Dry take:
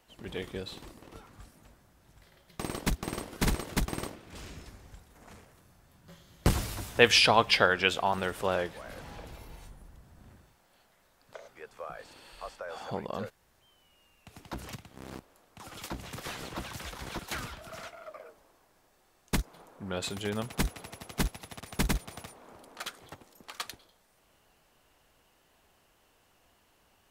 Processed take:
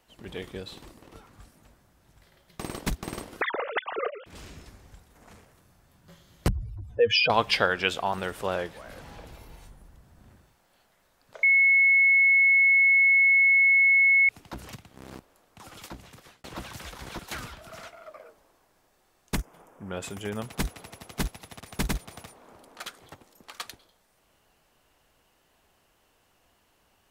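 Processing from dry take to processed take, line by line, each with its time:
3.41–4.26 s: formants replaced by sine waves
6.48–7.30 s: spectral contrast enhancement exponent 2.7
11.43–14.29 s: bleep 2.19 kHz -16 dBFS
15.67–16.44 s: fade out
19.35–20.42 s: peaking EQ 4.1 kHz -14 dB 0.35 oct

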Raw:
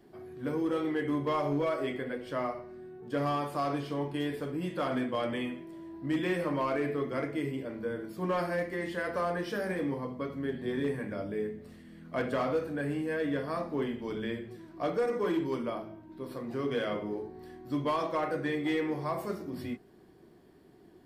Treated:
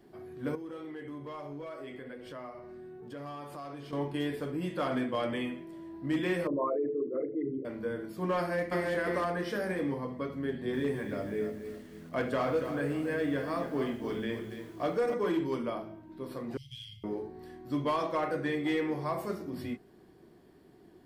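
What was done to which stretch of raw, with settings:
0.55–3.93 s: compression 3:1, threshold -43 dBFS
6.47–7.65 s: resonances exaggerated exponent 3
8.37–8.90 s: echo throw 340 ms, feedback 35%, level -1.5 dB
10.45–15.14 s: bit-crushed delay 282 ms, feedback 35%, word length 9-bit, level -9 dB
16.57–17.04 s: Chebyshev band-stop 120–3000 Hz, order 4

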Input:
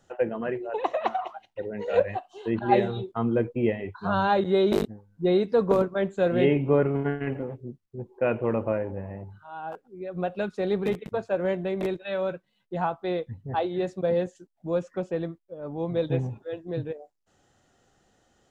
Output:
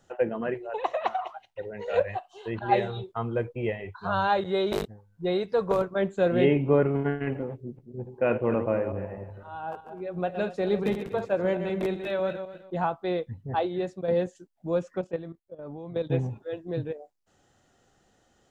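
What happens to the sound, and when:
0.54–5.91 s: peaking EQ 260 Hz -11.5 dB 0.98 oct
7.54–12.84 s: backward echo that repeats 126 ms, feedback 44%, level -8.5 dB
13.63–14.08 s: fade out, to -6 dB
15.01–16.10 s: level held to a coarse grid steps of 13 dB

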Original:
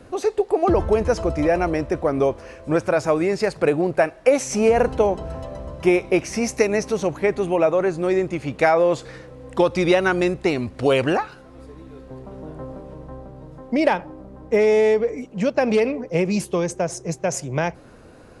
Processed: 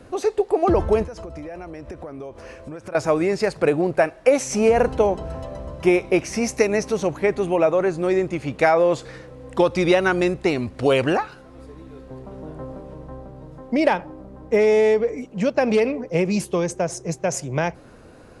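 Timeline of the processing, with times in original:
1.04–2.95 s: compression 12:1, threshold -31 dBFS

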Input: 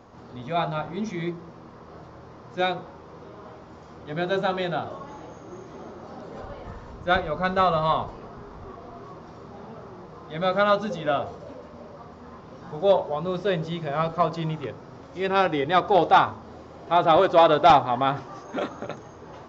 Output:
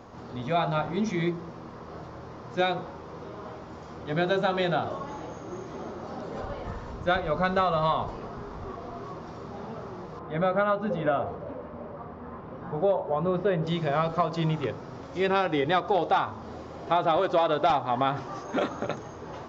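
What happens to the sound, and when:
10.19–13.67 s: low-pass 2 kHz
whole clip: compression 6:1, threshold -24 dBFS; trim +3 dB

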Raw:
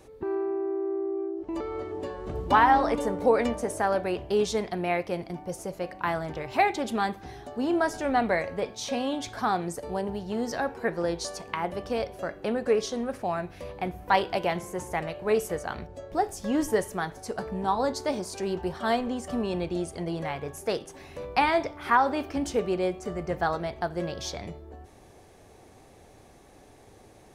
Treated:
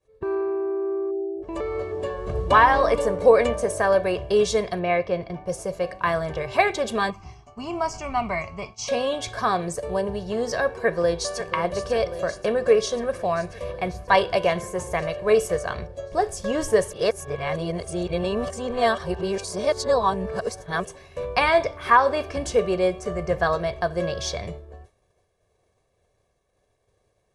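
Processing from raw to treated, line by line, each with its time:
1.11–1.42 s: spectral selection erased 890–7700 Hz
4.79–5.46 s: distance through air 140 m
7.10–8.88 s: static phaser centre 2.5 kHz, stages 8
10.76–11.49 s: echo throw 540 ms, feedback 75%, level -11 dB
16.93–20.85 s: reverse
whole clip: steep low-pass 11 kHz 36 dB/octave; expander -39 dBFS; comb 1.8 ms, depth 65%; trim +4 dB

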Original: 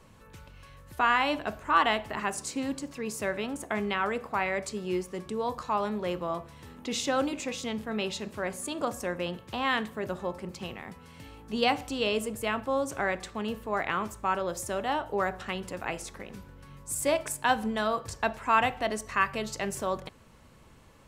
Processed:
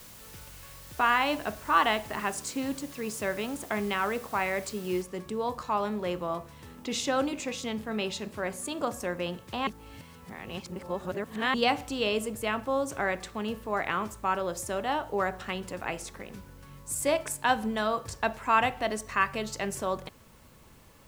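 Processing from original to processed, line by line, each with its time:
5.02 s: noise floor step -50 dB -64 dB
9.67–11.54 s: reverse

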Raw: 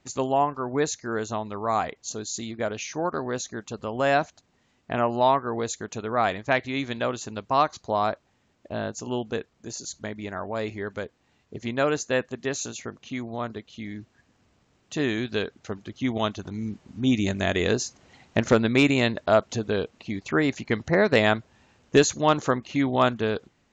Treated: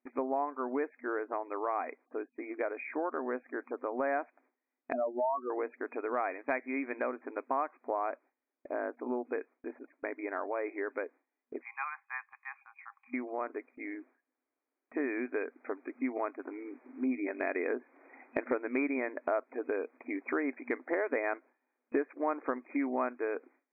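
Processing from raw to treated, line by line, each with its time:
4.93–5.50 s: spectral contrast enhancement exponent 3.5
11.62–13.14 s: rippled Chebyshev high-pass 780 Hz, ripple 9 dB
whole clip: FFT band-pass 240–2500 Hz; gate with hold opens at -50 dBFS; compression 3:1, threshold -32 dBFS

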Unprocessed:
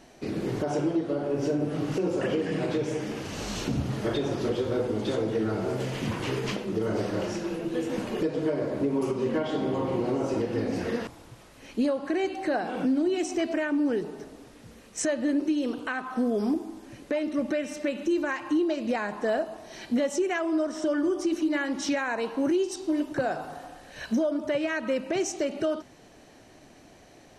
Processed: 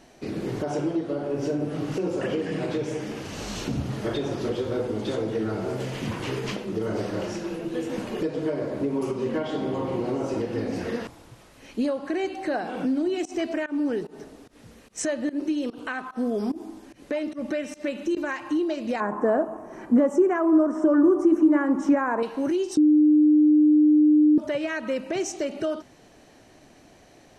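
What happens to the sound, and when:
13.25–18.17 s: volume shaper 147 bpm, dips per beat 1, -23 dB, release 144 ms
19.00–22.23 s: FFT filter 110 Hz 0 dB, 290 Hz +9 dB, 710 Hz +3 dB, 1.1 kHz +9 dB, 4.1 kHz -23 dB, 6.9 kHz -8 dB
22.77–24.38 s: bleep 302 Hz -13.5 dBFS

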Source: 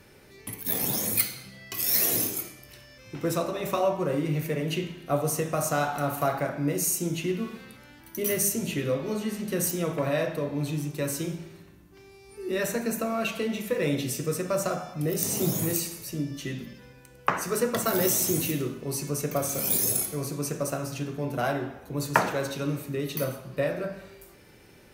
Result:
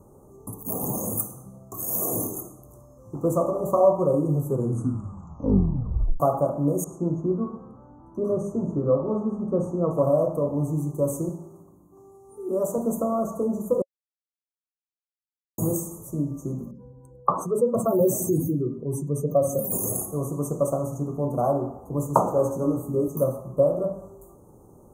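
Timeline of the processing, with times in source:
4.30 s: tape stop 1.90 s
6.84–9.91 s: resonant low-pass 2.3 kHz, resonance Q 3.8
11.29–12.78 s: high-pass 230 Hz 6 dB/octave
13.82–15.58 s: mute
16.71–19.72 s: spectral contrast enhancement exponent 1.7
22.36–23.08 s: doubling 17 ms -3 dB
whole clip: dynamic bell 550 Hz, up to +6 dB, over -45 dBFS, Q 7.5; Chebyshev band-stop 1.2–6.5 kHz, order 5; treble shelf 3.8 kHz -7.5 dB; trim +4.5 dB

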